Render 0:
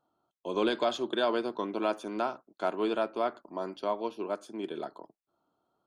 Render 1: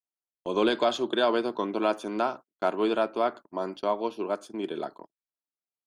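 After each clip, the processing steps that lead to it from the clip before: gate -45 dBFS, range -36 dB; trim +4 dB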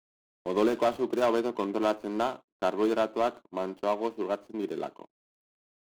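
median filter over 25 samples

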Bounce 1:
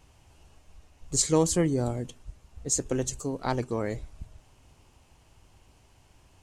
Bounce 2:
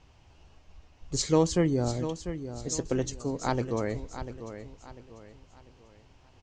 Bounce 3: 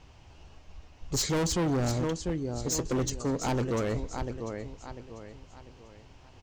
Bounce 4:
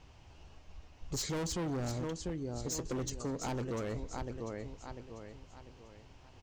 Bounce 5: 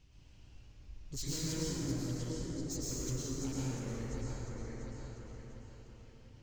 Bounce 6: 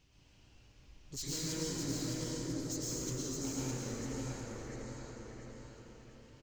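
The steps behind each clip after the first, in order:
low-pass 5.9 kHz 24 dB/octave; on a send: feedback delay 695 ms, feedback 36%, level -11 dB
hard clipper -29.5 dBFS, distortion -5 dB; trim +4.5 dB
compression, threshold -31 dBFS, peak gain reduction 5 dB; trim -3.5 dB
reverb removal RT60 1.7 s; peaking EQ 860 Hz -14 dB 2.1 oct; plate-style reverb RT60 3.9 s, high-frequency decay 0.45×, pre-delay 90 ms, DRR -8.5 dB; trim -4.5 dB
bass shelf 130 Hz -10.5 dB; delay 610 ms -5 dB; trim +1 dB

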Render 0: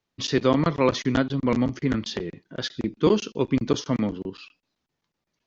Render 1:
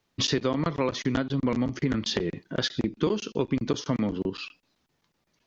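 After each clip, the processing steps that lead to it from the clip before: compression 6:1, threshold -30 dBFS, peak gain reduction 15 dB; trim +7 dB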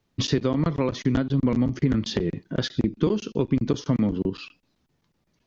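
bass shelf 360 Hz +10 dB; trim -2.5 dB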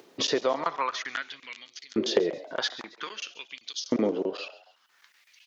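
upward compressor, threshold -43 dBFS; frequency-shifting echo 137 ms, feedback 40%, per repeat +120 Hz, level -18.5 dB; LFO high-pass saw up 0.51 Hz 350–5000 Hz; trim +1 dB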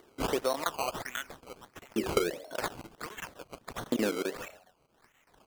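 decimation with a swept rate 17×, swing 100% 1.5 Hz; trim -4 dB

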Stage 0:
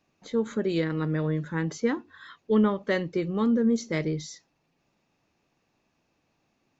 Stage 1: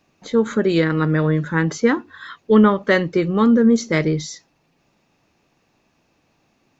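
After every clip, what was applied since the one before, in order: dynamic bell 1.4 kHz, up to +5 dB, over -48 dBFS, Q 1.7; trim +9 dB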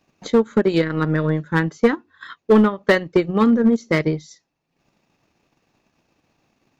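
transient shaper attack +8 dB, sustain -11 dB; in parallel at -4.5 dB: wavefolder -7 dBFS; on the sum: trim -6.5 dB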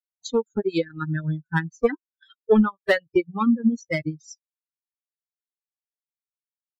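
expander on every frequency bin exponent 3; tape noise reduction on one side only encoder only

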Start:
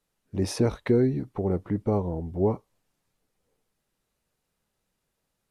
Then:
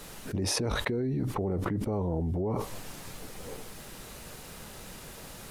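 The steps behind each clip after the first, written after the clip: peak limiter -18.5 dBFS, peak gain reduction 6.5 dB; level flattener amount 100%; trim -6 dB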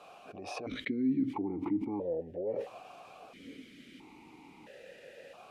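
stepped vowel filter 1.5 Hz; trim +7 dB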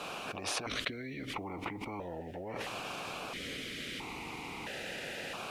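spectrum-flattening compressor 4:1; trim +2.5 dB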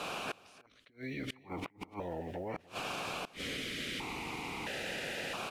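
inverted gate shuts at -29 dBFS, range -30 dB; delay 296 ms -21 dB; trim +2 dB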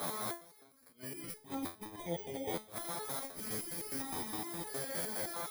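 bit-reversed sample order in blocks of 16 samples; resonator arpeggio 9.7 Hz 85–430 Hz; trim +11.5 dB

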